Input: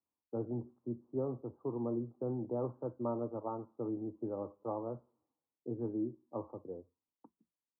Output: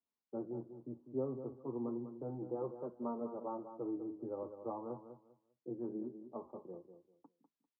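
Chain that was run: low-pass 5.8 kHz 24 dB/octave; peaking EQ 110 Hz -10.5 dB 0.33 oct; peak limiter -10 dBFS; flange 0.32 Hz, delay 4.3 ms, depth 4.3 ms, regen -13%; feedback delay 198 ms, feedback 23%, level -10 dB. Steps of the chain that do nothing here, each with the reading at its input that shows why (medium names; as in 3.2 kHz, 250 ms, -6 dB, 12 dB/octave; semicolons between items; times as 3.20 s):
low-pass 5.8 kHz: input has nothing above 1.4 kHz; peak limiter -10 dBFS: peak at its input -24.5 dBFS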